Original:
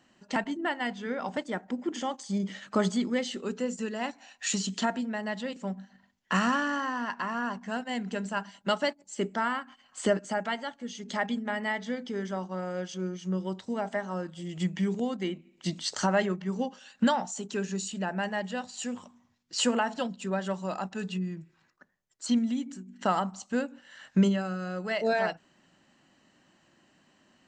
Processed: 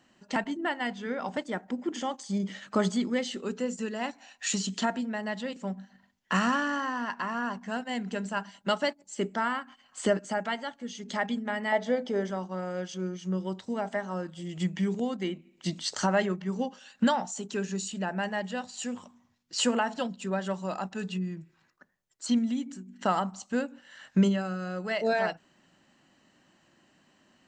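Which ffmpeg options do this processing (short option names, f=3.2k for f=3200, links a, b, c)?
-filter_complex "[0:a]asettb=1/sr,asplit=3[a][b][c];[a]atrim=end=11.724[d];[b]atrim=start=11.72:end=12.3,asetpts=PTS-STARTPTS,afade=t=in:d=0.004:c=qsin,afade=t=out:st=0.576:d=0.004:c=qsin,equalizer=f=630:t=o:w=1:g=14[e];[c]atrim=start=12.296[f];[d][e]acrossfade=d=0.004:c1=hsin:c2=qsin[g];[g][f]acrossfade=d=0.004:c1=qsin:c2=hsin"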